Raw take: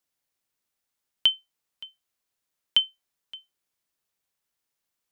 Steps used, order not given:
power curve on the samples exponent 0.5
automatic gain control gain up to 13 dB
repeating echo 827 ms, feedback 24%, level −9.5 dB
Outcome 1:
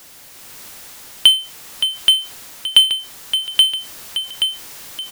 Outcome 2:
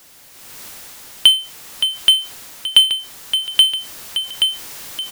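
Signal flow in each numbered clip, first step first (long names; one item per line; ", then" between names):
repeating echo, then automatic gain control, then power curve on the samples
repeating echo, then power curve on the samples, then automatic gain control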